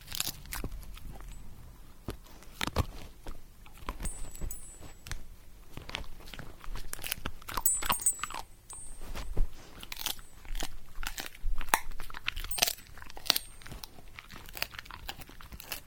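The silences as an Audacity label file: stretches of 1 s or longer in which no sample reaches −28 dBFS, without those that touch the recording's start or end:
0.660000	2.090000	silence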